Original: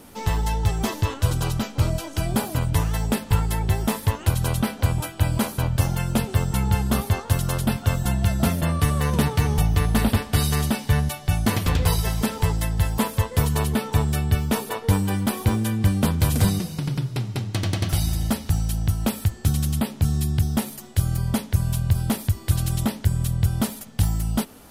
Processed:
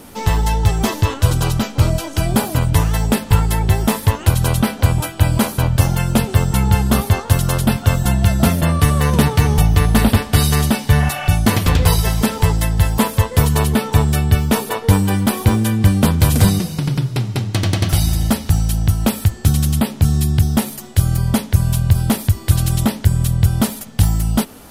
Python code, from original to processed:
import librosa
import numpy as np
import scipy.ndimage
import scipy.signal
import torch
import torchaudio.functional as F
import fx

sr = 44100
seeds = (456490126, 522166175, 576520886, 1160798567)

y = fx.spec_repair(x, sr, seeds[0], start_s=11.02, length_s=0.24, low_hz=500.0, high_hz=3500.0, source='both')
y = F.gain(torch.from_numpy(y), 7.0).numpy()